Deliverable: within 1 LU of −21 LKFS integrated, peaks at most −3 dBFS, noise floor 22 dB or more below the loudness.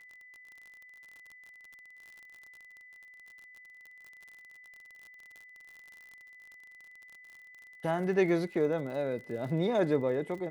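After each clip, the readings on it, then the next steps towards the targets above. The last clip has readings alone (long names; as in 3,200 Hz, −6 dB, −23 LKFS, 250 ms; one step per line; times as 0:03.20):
crackle rate 47 per second; interfering tone 2,000 Hz; level of the tone −51 dBFS; integrated loudness −30.5 LKFS; sample peak −15.5 dBFS; target loudness −21.0 LKFS
→ click removal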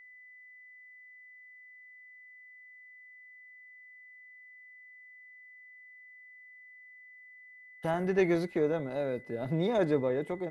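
crackle rate 0 per second; interfering tone 2,000 Hz; level of the tone −51 dBFS
→ notch filter 2,000 Hz, Q 30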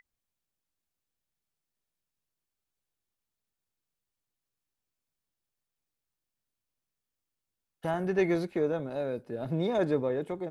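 interfering tone none found; integrated loudness −30.5 LKFS; sample peak −16.0 dBFS; target loudness −21.0 LKFS
→ level +9.5 dB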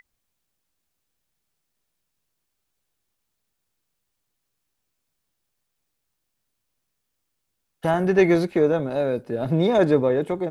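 integrated loudness −21.0 LKFS; sample peak −6.5 dBFS; background noise floor −78 dBFS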